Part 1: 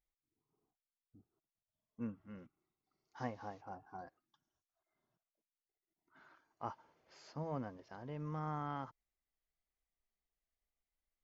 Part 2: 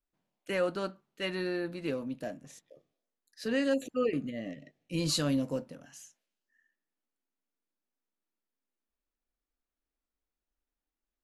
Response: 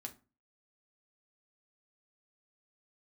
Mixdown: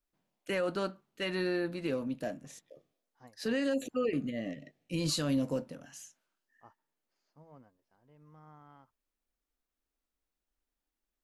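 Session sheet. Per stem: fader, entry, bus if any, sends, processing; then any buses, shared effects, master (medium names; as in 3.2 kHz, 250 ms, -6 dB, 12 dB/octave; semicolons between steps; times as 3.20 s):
-13.5 dB, 0.00 s, no send, upward expansion 1.5:1, over -56 dBFS
+1.5 dB, 0.00 s, no send, none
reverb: none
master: peak limiter -22.5 dBFS, peak gain reduction 6 dB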